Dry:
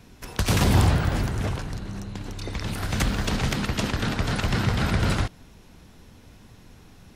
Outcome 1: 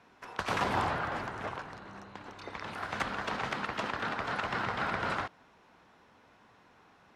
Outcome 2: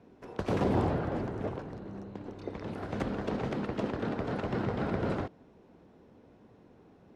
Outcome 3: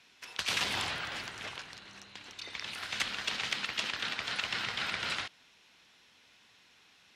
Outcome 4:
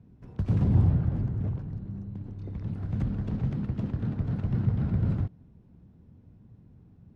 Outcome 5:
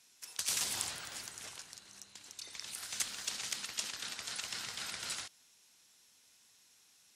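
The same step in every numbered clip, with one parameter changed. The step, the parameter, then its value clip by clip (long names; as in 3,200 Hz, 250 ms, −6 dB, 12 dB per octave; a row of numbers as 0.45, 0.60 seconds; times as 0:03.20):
resonant band-pass, frequency: 1,100, 440, 3,000, 130, 8,000 Hertz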